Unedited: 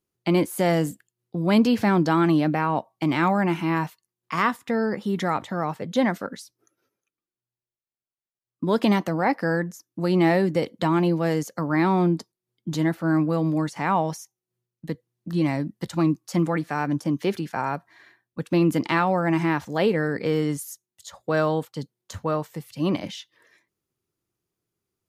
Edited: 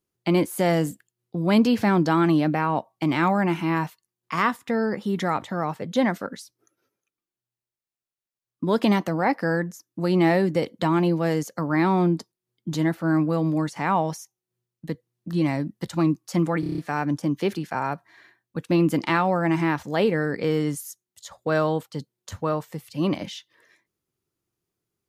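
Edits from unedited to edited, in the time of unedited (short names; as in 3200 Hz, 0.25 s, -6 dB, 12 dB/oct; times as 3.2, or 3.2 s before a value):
16.6 stutter 0.03 s, 7 plays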